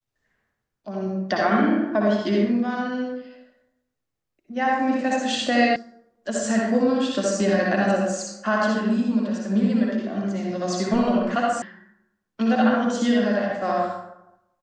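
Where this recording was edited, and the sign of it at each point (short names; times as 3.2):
5.76 sound cut off
11.62 sound cut off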